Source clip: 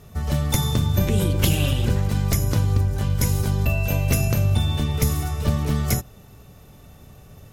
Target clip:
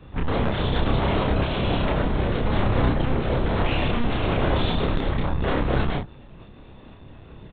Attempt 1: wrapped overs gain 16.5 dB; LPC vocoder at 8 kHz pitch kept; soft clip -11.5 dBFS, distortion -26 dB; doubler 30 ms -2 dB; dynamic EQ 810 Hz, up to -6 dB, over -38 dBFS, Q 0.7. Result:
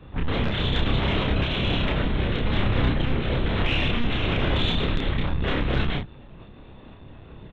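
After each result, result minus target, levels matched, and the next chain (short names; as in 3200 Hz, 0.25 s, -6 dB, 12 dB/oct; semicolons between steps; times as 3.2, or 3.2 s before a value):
soft clip: distortion +15 dB; 4000 Hz band +5.5 dB
wrapped overs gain 16.5 dB; LPC vocoder at 8 kHz pitch kept; soft clip -3 dBFS, distortion -41 dB; doubler 30 ms -2 dB; dynamic EQ 810 Hz, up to -6 dB, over -38 dBFS, Q 0.7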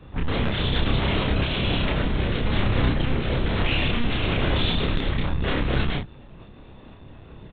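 4000 Hz band +5.5 dB
wrapped overs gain 16.5 dB; LPC vocoder at 8 kHz pitch kept; soft clip -3 dBFS, distortion -41 dB; doubler 30 ms -2 dB; dynamic EQ 2900 Hz, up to -6 dB, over -38 dBFS, Q 0.7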